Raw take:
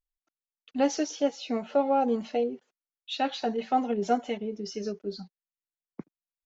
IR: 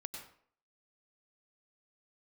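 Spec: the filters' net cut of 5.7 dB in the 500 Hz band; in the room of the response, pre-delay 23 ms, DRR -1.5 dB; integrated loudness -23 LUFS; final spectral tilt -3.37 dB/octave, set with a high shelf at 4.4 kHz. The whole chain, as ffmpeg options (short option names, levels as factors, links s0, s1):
-filter_complex "[0:a]equalizer=f=500:t=o:g=-6.5,highshelf=f=4400:g=6.5,asplit=2[s0][s1];[1:a]atrim=start_sample=2205,adelay=23[s2];[s1][s2]afir=irnorm=-1:irlink=0,volume=1.5[s3];[s0][s3]amix=inputs=2:normalize=0,volume=1.78"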